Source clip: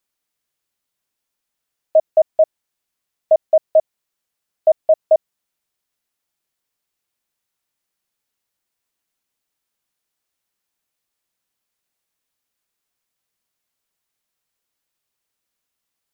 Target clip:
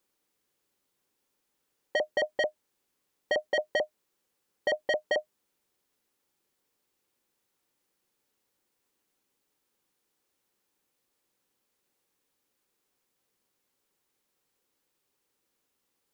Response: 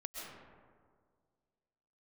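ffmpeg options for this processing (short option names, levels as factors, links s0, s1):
-af "asoftclip=type=tanh:threshold=0.126,asuperstop=centerf=660:order=12:qfactor=6.5,equalizer=f=370:t=o:w=2.1:g=9.5"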